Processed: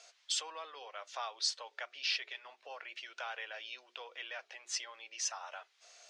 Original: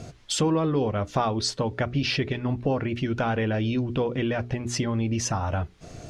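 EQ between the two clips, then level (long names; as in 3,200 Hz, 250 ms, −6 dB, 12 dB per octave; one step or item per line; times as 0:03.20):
inverse Chebyshev high-pass filter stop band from 160 Hz, stop band 60 dB
high-frequency loss of the air 120 metres
first difference
+3.5 dB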